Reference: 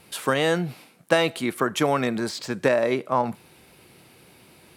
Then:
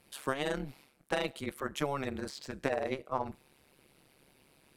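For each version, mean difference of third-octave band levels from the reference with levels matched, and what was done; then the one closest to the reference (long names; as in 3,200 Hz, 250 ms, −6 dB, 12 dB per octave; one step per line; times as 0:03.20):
1.5 dB: amplitude modulation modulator 140 Hz, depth 100%
level −8 dB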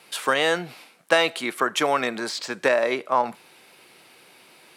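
4.0 dB: meter weighting curve A
level +2.5 dB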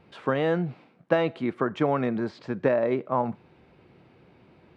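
6.5 dB: head-to-tape spacing loss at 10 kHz 39 dB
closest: first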